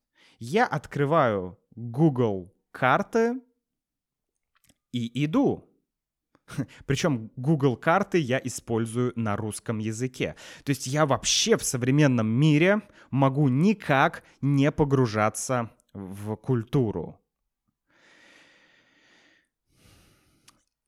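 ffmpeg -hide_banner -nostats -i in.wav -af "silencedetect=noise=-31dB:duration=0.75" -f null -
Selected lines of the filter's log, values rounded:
silence_start: 3.37
silence_end: 4.94 | silence_duration: 1.57
silence_start: 5.55
silence_end: 6.52 | silence_duration: 0.97
silence_start: 17.08
silence_end: 20.88 | silence_duration: 3.80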